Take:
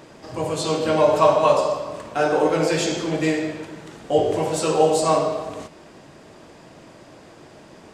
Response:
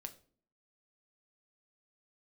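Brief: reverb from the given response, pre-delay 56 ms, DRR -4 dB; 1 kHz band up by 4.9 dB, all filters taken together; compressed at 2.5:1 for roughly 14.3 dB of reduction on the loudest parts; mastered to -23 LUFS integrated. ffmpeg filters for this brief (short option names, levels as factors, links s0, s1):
-filter_complex "[0:a]equalizer=f=1000:t=o:g=6,acompressor=threshold=0.0316:ratio=2.5,asplit=2[s0][s1];[1:a]atrim=start_sample=2205,adelay=56[s2];[s1][s2]afir=irnorm=-1:irlink=0,volume=2.66[s3];[s0][s3]amix=inputs=2:normalize=0,volume=1.12"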